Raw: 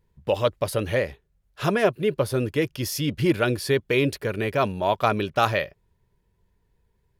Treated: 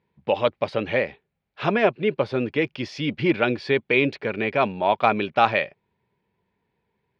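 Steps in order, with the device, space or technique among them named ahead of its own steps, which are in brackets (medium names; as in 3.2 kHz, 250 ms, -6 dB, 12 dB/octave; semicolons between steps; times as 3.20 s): kitchen radio (cabinet simulation 160–4200 Hz, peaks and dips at 230 Hz +4 dB, 810 Hz +6 dB, 2.3 kHz +7 dB)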